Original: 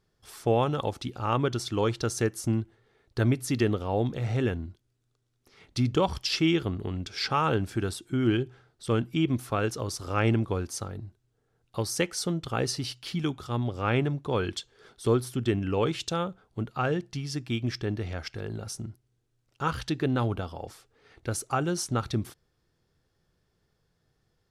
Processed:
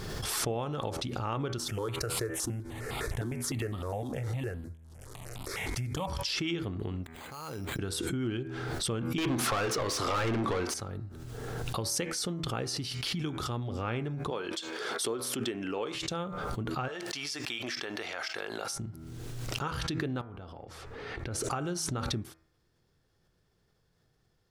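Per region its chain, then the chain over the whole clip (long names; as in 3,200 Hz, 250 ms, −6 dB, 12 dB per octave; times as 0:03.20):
0:01.58–0:06.10: variable-slope delta modulation 64 kbit/s + step-sequenced phaser 9.8 Hz 590–1,700 Hz
0:07.04–0:07.79: gate with flip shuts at −29 dBFS, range −31 dB + bad sample-rate conversion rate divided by 8×, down none, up hold
0:09.18–0:10.74: mid-hump overdrive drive 31 dB, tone 3,200 Hz, clips at −11 dBFS + hum removal 73.1 Hz, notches 31
0:14.30–0:15.95: downward expander −55 dBFS + high-pass filter 330 Hz
0:16.88–0:18.72: high-pass filter 730 Hz + envelope flattener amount 70%
0:20.21–0:21.44: low-pass filter 2,500 Hz 6 dB per octave + downward compressor, threshold −41 dBFS
whole clip: downward compressor 2.5 to 1, threshold −34 dBFS; hum removal 80.93 Hz, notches 31; background raised ahead of every attack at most 21 dB per second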